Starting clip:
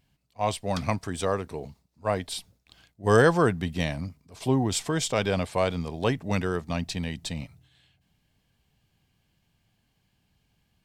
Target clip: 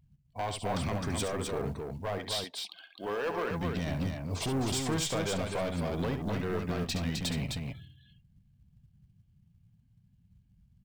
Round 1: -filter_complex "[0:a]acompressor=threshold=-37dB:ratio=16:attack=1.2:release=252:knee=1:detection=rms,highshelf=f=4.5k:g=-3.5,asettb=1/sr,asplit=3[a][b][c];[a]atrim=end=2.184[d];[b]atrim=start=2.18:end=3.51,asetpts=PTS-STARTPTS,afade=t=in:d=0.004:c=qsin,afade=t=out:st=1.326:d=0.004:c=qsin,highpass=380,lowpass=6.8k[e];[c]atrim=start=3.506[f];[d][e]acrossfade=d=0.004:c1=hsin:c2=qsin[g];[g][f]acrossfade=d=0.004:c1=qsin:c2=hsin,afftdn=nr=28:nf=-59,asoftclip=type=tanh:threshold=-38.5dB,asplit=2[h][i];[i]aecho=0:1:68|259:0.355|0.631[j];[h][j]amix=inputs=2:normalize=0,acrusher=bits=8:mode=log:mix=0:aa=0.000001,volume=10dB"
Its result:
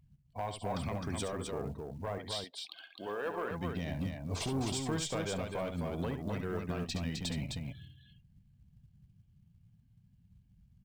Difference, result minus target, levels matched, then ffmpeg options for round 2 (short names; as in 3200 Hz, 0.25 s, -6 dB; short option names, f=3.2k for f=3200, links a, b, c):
compressor: peak gain reduction +7 dB
-filter_complex "[0:a]acompressor=threshold=-29.5dB:ratio=16:attack=1.2:release=252:knee=1:detection=rms,highshelf=f=4.5k:g=-3.5,asettb=1/sr,asplit=3[a][b][c];[a]atrim=end=2.184[d];[b]atrim=start=2.18:end=3.51,asetpts=PTS-STARTPTS,afade=t=in:d=0.004:c=qsin,afade=t=out:st=1.326:d=0.004:c=qsin,highpass=380,lowpass=6.8k[e];[c]atrim=start=3.506[f];[d][e]acrossfade=d=0.004:c1=hsin:c2=qsin[g];[g][f]acrossfade=d=0.004:c1=qsin:c2=hsin,afftdn=nr=28:nf=-59,asoftclip=type=tanh:threshold=-38.5dB,asplit=2[h][i];[i]aecho=0:1:68|259:0.355|0.631[j];[h][j]amix=inputs=2:normalize=0,acrusher=bits=8:mode=log:mix=0:aa=0.000001,volume=10dB"